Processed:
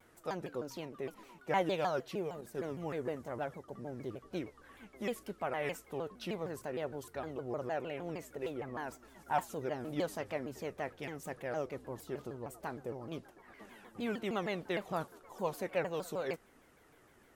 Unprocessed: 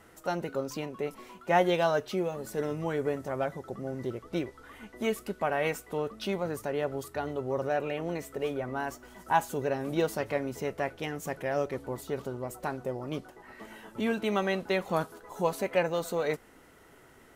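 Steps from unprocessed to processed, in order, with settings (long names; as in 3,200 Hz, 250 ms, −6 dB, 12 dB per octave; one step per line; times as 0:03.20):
0:02.41–0:03.68: downward expander −38 dBFS
pitch modulation by a square or saw wave saw down 6.5 Hz, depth 250 cents
level −7.5 dB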